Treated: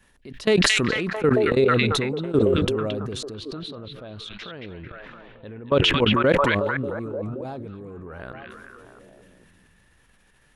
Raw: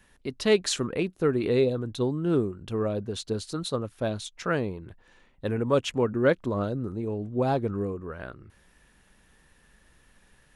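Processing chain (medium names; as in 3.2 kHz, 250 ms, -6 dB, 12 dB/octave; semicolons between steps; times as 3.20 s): 3.34–5.98 s: resonant high shelf 5.1 kHz -12.5 dB, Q 1.5; level held to a coarse grid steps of 22 dB; repeats whose band climbs or falls 223 ms, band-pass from 2.6 kHz, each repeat -0.7 oct, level -2 dB; decay stretcher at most 20 dB/s; trim +5.5 dB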